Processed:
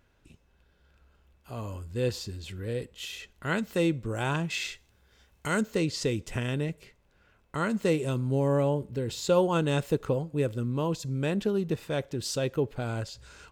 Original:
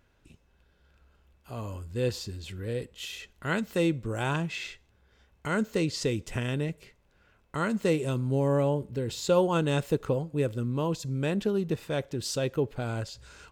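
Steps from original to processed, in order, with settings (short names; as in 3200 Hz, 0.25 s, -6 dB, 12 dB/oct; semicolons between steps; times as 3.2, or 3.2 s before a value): 4.5–5.61 high shelf 3800 Hz +10 dB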